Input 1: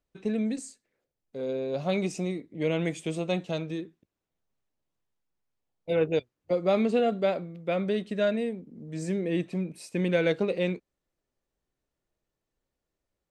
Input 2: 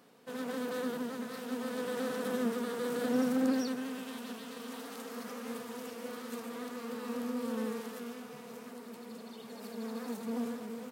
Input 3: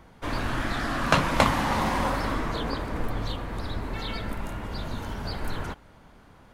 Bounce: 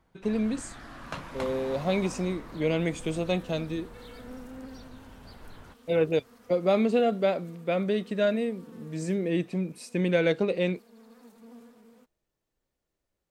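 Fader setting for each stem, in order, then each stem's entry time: +1.0, -14.0, -16.5 dB; 0.00, 1.15, 0.00 s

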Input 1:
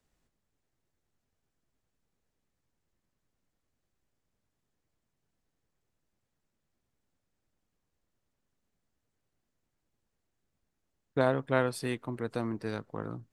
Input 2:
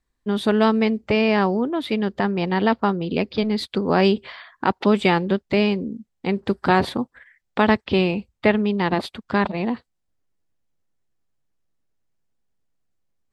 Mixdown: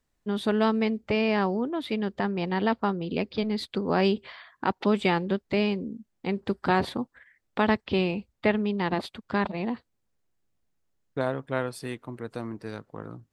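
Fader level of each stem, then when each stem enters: -1.5, -6.0 dB; 0.00, 0.00 s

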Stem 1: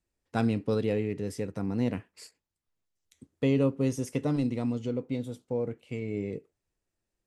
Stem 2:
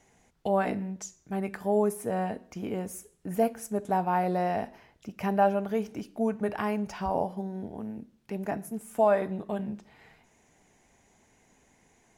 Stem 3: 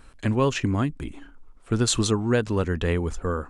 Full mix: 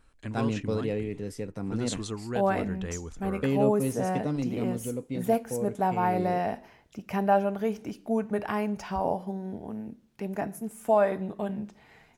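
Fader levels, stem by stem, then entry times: -2.0, +0.5, -12.5 dB; 0.00, 1.90, 0.00 s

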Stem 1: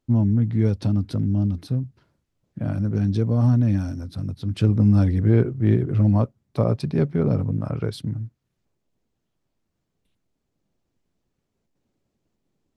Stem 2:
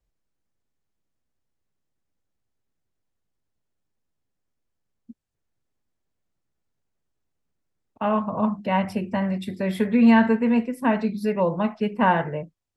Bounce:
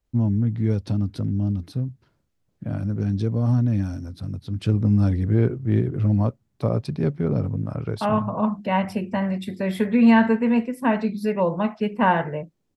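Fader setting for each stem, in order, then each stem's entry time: -2.0, +0.5 dB; 0.05, 0.00 s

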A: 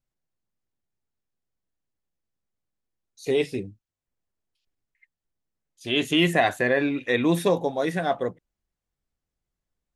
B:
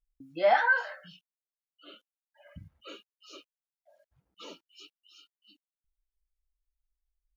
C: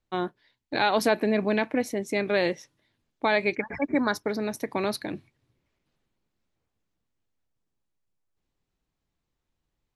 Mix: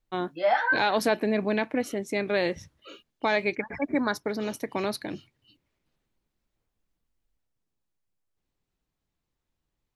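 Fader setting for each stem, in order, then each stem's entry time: off, -0.5 dB, -1.5 dB; off, 0.00 s, 0.00 s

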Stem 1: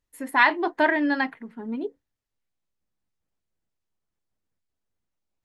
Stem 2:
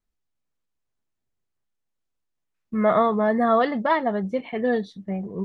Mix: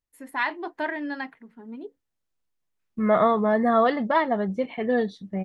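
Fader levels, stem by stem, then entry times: -8.0, -0.5 dB; 0.00, 0.25 s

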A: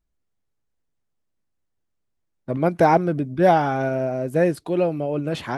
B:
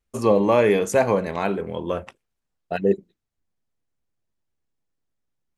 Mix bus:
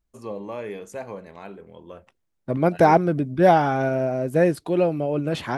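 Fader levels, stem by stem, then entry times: +0.5, -15.5 dB; 0.00, 0.00 s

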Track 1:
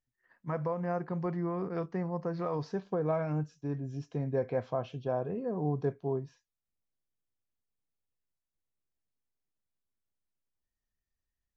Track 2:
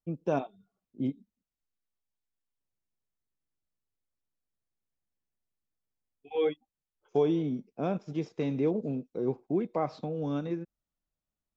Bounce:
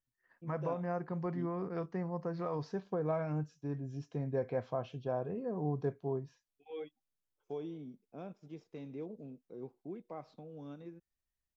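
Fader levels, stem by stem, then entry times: -3.5, -15.5 dB; 0.00, 0.35 s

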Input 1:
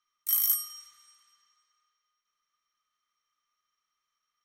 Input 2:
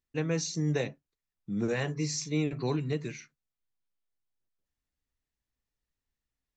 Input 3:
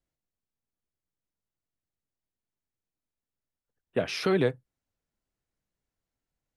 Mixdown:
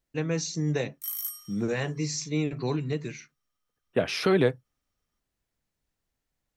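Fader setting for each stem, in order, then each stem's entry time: -8.0, +1.5, +2.5 dB; 0.75, 0.00, 0.00 s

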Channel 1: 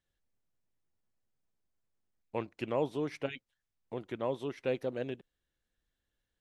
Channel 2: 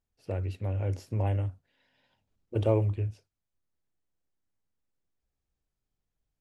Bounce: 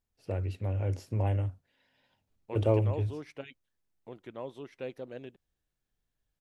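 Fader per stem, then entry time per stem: -6.5, -0.5 dB; 0.15, 0.00 s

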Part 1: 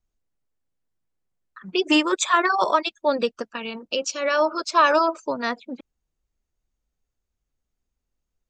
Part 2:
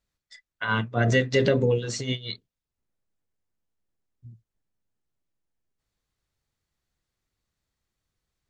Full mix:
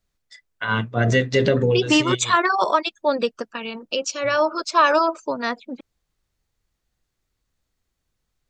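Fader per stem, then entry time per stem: +1.0, +3.0 dB; 0.00, 0.00 s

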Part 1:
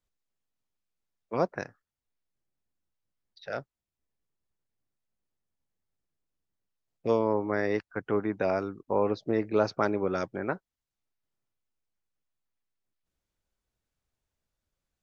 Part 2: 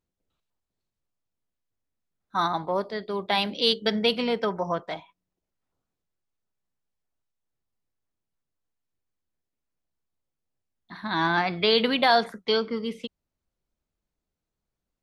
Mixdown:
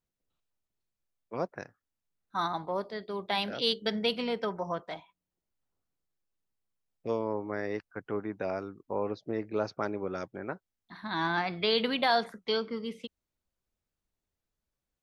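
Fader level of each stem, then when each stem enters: -6.0, -6.0 dB; 0.00, 0.00 s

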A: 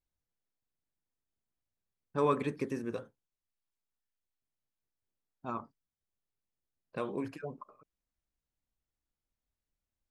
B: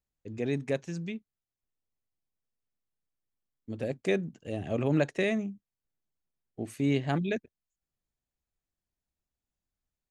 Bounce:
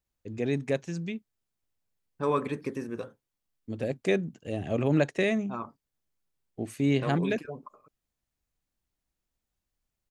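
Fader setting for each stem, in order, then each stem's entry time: +1.5, +2.0 dB; 0.05, 0.00 s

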